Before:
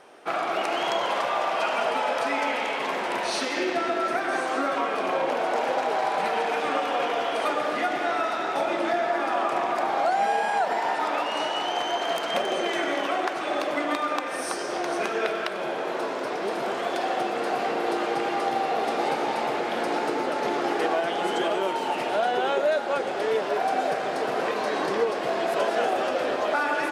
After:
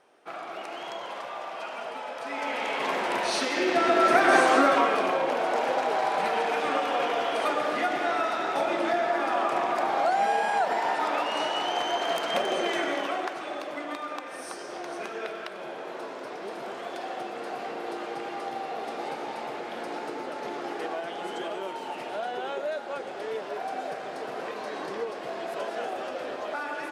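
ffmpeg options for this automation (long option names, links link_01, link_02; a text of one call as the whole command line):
ffmpeg -i in.wav -af "volume=8dB,afade=type=in:start_time=2.2:duration=0.68:silence=0.281838,afade=type=in:start_time=3.59:duration=0.77:silence=0.398107,afade=type=out:start_time=4.36:duration=0.81:silence=0.354813,afade=type=out:start_time=12.71:duration=0.88:silence=0.421697" out.wav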